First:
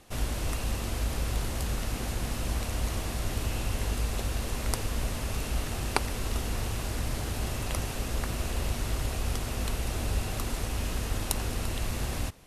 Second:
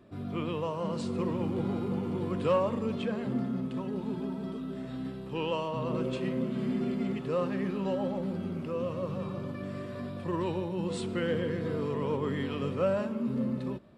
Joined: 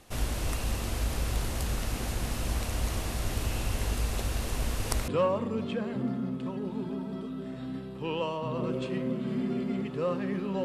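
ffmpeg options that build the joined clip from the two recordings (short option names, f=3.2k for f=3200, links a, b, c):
-filter_complex "[0:a]apad=whole_dur=10.64,atrim=end=10.64,asplit=2[a][b];[a]atrim=end=4.582[c];[b]atrim=start=4.578:end=5.082,asetpts=PTS-STARTPTS,areverse[d];[1:a]atrim=start=2.388:end=7.95[e];[c][d]acrossfade=d=0.004:c1=hsin:c2=hsin[f];[f][e]acrossfade=d=0.004:c1=hsin:c2=hsin"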